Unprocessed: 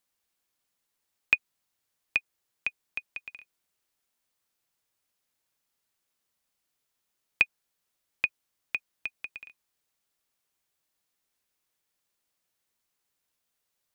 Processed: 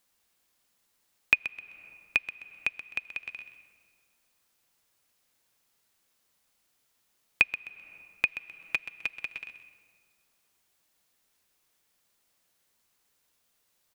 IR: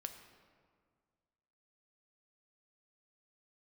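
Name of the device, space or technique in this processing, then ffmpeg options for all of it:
ducked reverb: -filter_complex "[0:a]asplit=3[link_01][link_02][link_03];[1:a]atrim=start_sample=2205[link_04];[link_02][link_04]afir=irnorm=-1:irlink=0[link_05];[link_03]apad=whole_len=615060[link_06];[link_05][link_06]sidechaincompress=threshold=-45dB:ratio=5:attack=31:release=298,volume=6dB[link_07];[link_01][link_07]amix=inputs=2:normalize=0,asettb=1/sr,asplit=3[link_08][link_09][link_10];[link_08]atrim=end=8.264[link_11];[link_09]atrim=start=8.26:end=9.46,asetpts=PTS-STARTPTS,afade=type=in:duration=0.004:curve=qsin,afade=type=out:start_time=1.196:duration=0.004:curve=qsin,aecho=1:1:6.2:0.65,atrim=end_sample=52920[link_12];[link_10]atrim=start=9.456[link_13];[link_11][link_12]acrossfade=duration=0.004:curve1=hsin:curve2=qsin[link_14];[link_14][link_13]acrossfade=duration=0.004:curve1=qsin:curve2=hsin,aecho=1:1:129|258|387:0.224|0.0649|0.0188"

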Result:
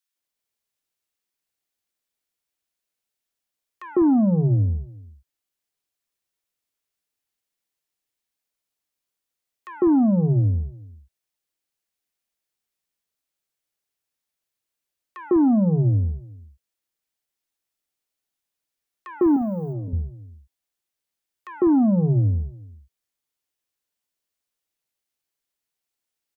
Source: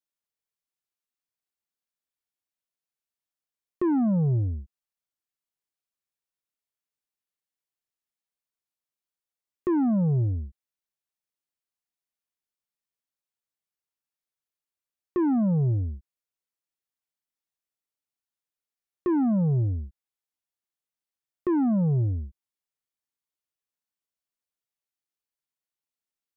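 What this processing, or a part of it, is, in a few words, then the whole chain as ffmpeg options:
ducked delay: -filter_complex "[0:a]asplit=3[link_01][link_02][link_03];[link_02]adelay=363,volume=-7.5dB[link_04];[link_03]apad=whole_len=1178772[link_05];[link_04][link_05]sidechaincompress=threshold=-48dB:ratio=3:attack=16:release=1110[link_06];[link_01][link_06]amix=inputs=2:normalize=0,asettb=1/sr,asplit=3[link_07][link_08][link_09];[link_07]atrim=end=19.214[link_10];[link_08]atrim=start=19.21:end=19.73,asetpts=PTS-STARTPTS,afade=type=in:duration=0.004:curve=qsin,afade=type=out:start_time=0.516:duration=0.004:curve=qsin,aemphasis=mode=production:type=riaa[link_11];[link_09]atrim=start=19.726[link_12];[link_10][link_11]acrossfade=duration=0.004:curve1=hsin:curve2=qsin[link_13];[link_13][link_12]acrossfade=duration=0.004:curve1=qsin:curve2=hsin,acrossover=split=160|1100[link_14][link_15][link_16];[link_15]adelay=150[link_17];[link_14]adelay=200[link_18];[link_18][link_17][link_16]amix=inputs=3:normalize=0,volume=7dB"

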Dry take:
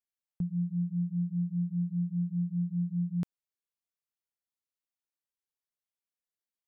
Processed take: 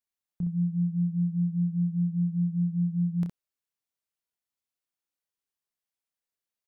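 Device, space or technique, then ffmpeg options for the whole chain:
slapback doubling: -filter_complex "[0:a]asplit=3[link_01][link_02][link_03];[link_02]adelay=29,volume=-7dB[link_04];[link_03]adelay=64,volume=-6dB[link_05];[link_01][link_04][link_05]amix=inputs=3:normalize=0"

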